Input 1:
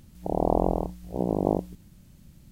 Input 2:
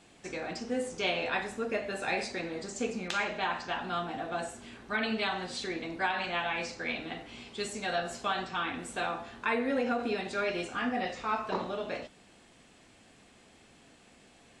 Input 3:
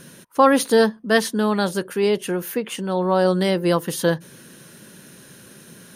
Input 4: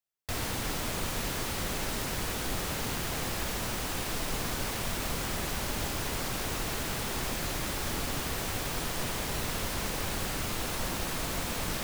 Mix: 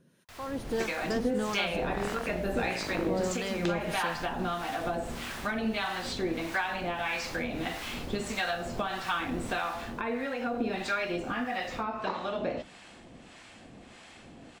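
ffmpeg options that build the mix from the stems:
-filter_complex "[0:a]adelay=1500,volume=0.447[s0];[1:a]bandreject=f=420:w=12,adelay=550,volume=1.12[s1];[2:a]volume=0.141[s2];[3:a]volume=0.2,afade=t=out:st=9.58:d=0.35:silence=0.421697[s3];[s1][s3]amix=inputs=2:normalize=0,acompressor=threshold=0.0158:ratio=6,volume=1[s4];[s0][s2]amix=inputs=2:normalize=0,aeval=exprs='0.0841*(abs(mod(val(0)/0.0841+3,4)-2)-1)':c=same,alimiter=level_in=2.24:limit=0.0631:level=0:latency=1:release=221,volume=0.447,volume=1[s5];[s4][s5]amix=inputs=2:normalize=0,highshelf=f=6200:g=-9,dynaudnorm=f=150:g=7:m=3.55,acrossover=split=760[s6][s7];[s6]aeval=exprs='val(0)*(1-0.7/2+0.7/2*cos(2*PI*1.6*n/s))':c=same[s8];[s7]aeval=exprs='val(0)*(1-0.7/2-0.7/2*cos(2*PI*1.6*n/s))':c=same[s9];[s8][s9]amix=inputs=2:normalize=0"

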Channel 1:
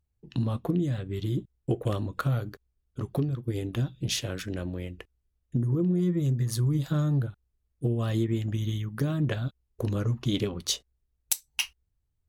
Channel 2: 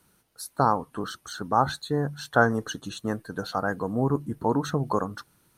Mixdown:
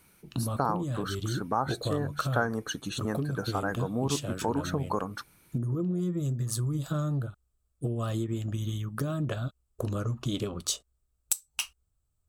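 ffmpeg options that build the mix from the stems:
-filter_complex "[0:a]equalizer=f=630:t=o:w=0.33:g=6,equalizer=f=1250:t=o:w=0.33:g=9,equalizer=f=2000:t=o:w=0.33:g=-7,equalizer=f=8000:t=o:w=0.33:g=11,volume=1[s0];[1:a]equalizer=f=2300:t=o:w=0.21:g=13.5,volume=1.12[s1];[s0][s1]amix=inputs=2:normalize=0,highshelf=f=11000:g=5,acompressor=threshold=0.0316:ratio=2"

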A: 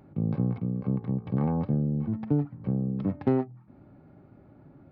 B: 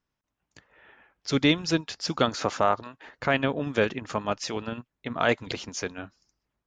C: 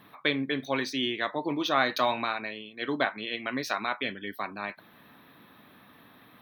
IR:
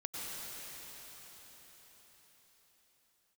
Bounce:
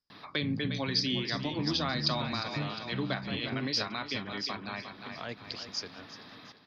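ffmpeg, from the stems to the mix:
-filter_complex "[0:a]adelay=250,volume=0.376[s0];[1:a]volume=0.266,asplit=2[s1][s2];[s2]volume=0.15[s3];[2:a]adelay=100,volume=1.41,asplit=2[s4][s5];[s5]volume=0.282[s6];[s3][s6]amix=inputs=2:normalize=0,aecho=0:1:354|708|1062|1416|1770|2124:1|0.44|0.194|0.0852|0.0375|0.0165[s7];[s0][s1][s4][s7]amix=inputs=4:normalize=0,acrossover=split=220[s8][s9];[s9]acompressor=threshold=0.00708:ratio=2[s10];[s8][s10]amix=inputs=2:normalize=0,lowpass=f=4900:t=q:w=13"

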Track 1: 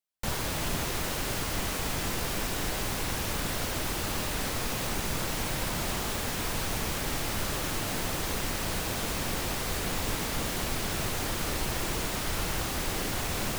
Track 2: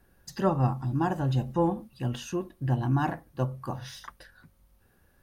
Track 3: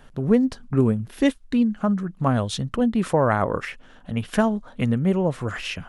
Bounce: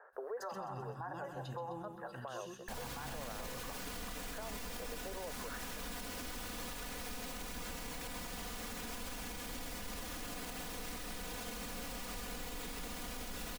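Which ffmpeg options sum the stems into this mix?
-filter_complex "[0:a]aecho=1:1:4.1:0.95,adelay=2450,volume=0.355,asplit=2[s0][s1];[s1]volume=0.562[s2];[1:a]tiltshelf=f=1400:g=-6,volume=0.944,asplit=3[s3][s4][s5];[s4]volume=0.2[s6];[2:a]volume=0.794[s7];[s5]apad=whole_len=259530[s8];[s7][s8]sidechaincompress=threshold=0.00708:ratio=8:attack=41:release=944[s9];[s3][s9]amix=inputs=2:normalize=0,asuperpass=centerf=860:order=12:qfactor=0.66,acompressor=threshold=0.0224:ratio=6,volume=1[s10];[s2][s6]amix=inputs=2:normalize=0,aecho=0:1:129|258|387|516|645|774|903:1|0.49|0.24|0.118|0.0576|0.0282|0.0138[s11];[s0][s10][s11]amix=inputs=3:normalize=0,alimiter=level_in=3.16:limit=0.0631:level=0:latency=1:release=107,volume=0.316"

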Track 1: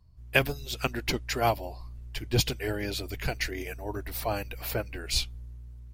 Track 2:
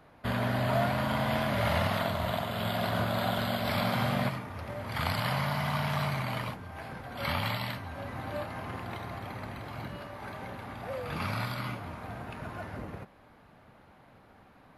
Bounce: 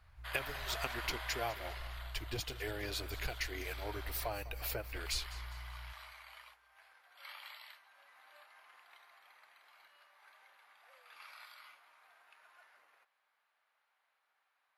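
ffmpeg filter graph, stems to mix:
-filter_complex "[0:a]acompressor=threshold=0.0282:ratio=6,volume=0.708,asplit=2[s0][s1];[s1]volume=0.141[s2];[1:a]highpass=1300,volume=0.501,afade=t=out:st=1.06:d=0.72:silence=0.354813[s3];[s2]aecho=0:1:202|404|606|808|1010|1212:1|0.41|0.168|0.0689|0.0283|0.0116[s4];[s0][s3][s4]amix=inputs=3:normalize=0,equalizer=f=190:t=o:w=1.3:g=-11.5"

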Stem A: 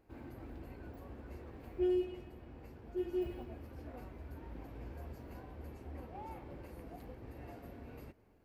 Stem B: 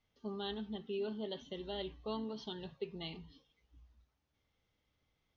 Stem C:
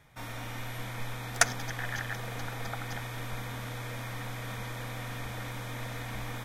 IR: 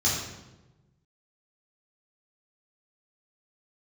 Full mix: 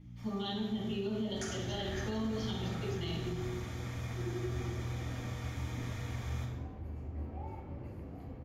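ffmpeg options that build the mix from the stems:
-filter_complex "[0:a]highshelf=f=2100:g=-9.5,adelay=1200,volume=1,asplit=2[s0][s1];[s1]volume=0.266[s2];[1:a]aeval=exprs='val(0)+0.00224*(sin(2*PI*60*n/s)+sin(2*PI*2*60*n/s)/2+sin(2*PI*3*60*n/s)/3+sin(2*PI*4*60*n/s)/4+sin(2*PI*5*60*n/s)/5)':c=same,volume=1.06,asplit=3[s3][s4][s5];[s4]volume=0.447[s6];[2:a]volume=0.376,afade=t=in:st=1.29:d=0.72:silence=0.398107,asplit=2[s7][s8];[s8]volume=0.299[s9];[s5]apad=whole_len=284334[s10];[s7][s10]sidechaincompress=threshold=0.00178:ratio=8:attack=16:release=390[s11];[s0][s11]amix=inputs=2:normalize=0,acompressor=threshold=0.00562:ratio=6,volume=1[s12];[3:a]atrim=start_sample=2205[s13];[s2][s6][s9]amix=inputs=3:normalize=0[s14];[s14][s13]afir=irnorm=-1:irlink=0[s15];[s3][s12][s15]amix=inputs=3:normalize=0,alimiter=level_in=1.5:limit=0.0631:level=0:latency=1:release=108,volume=0.668"

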